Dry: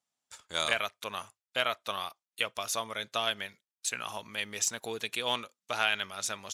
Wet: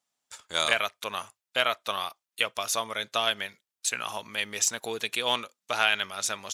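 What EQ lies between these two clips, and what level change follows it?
low-shelf EQ 200 Hz −5 dB
+4.5 dB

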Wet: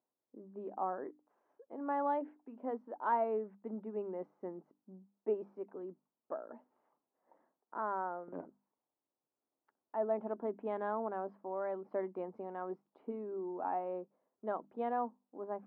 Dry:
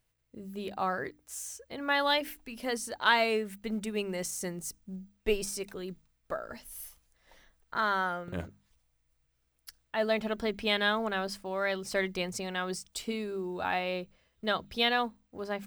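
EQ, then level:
four-pole ladder high-pass 230 Hz, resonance 45%
transistor ladder low-pass 1,100 Hz, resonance 45%
+8.0 dB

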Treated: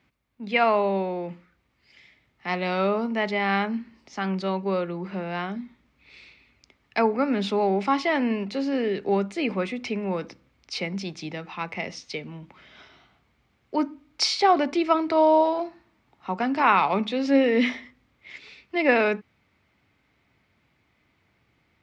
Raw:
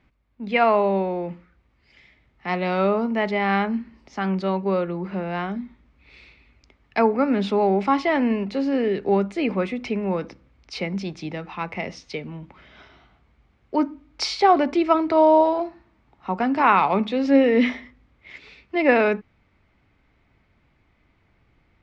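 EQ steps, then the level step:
high-pass filter 89 Hz 12 dB per octave
high-shelf EQ 2,800 Hz +8.5 dB
−3.5 dB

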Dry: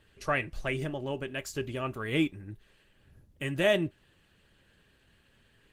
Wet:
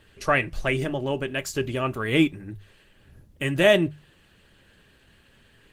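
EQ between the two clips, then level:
mains-hum notches 50/100/150 Hz
+7.5 dB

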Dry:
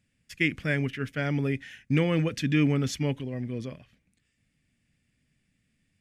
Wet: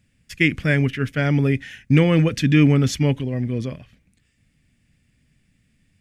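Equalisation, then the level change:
low-shelf EQ 130 Hz +6.5 dB
+7.0 dB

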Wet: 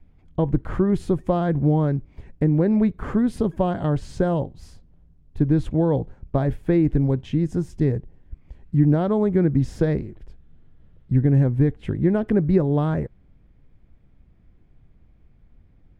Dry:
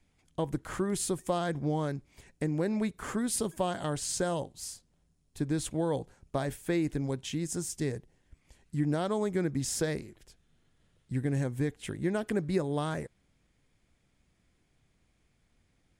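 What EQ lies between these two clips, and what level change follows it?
spectral tilt −3 dB per octave
high-shelf EQ 5,000 Hz −8.5 dB
parametric band 8,000 Hz −8 dB 1.2 octaves
+5.5 dB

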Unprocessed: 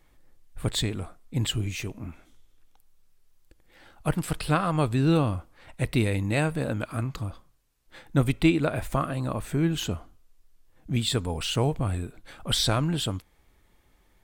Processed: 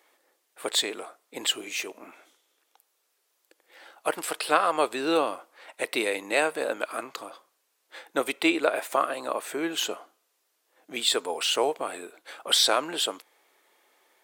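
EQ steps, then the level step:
high-pass filter 400 Hz 24 dB per octave
+4.5 dB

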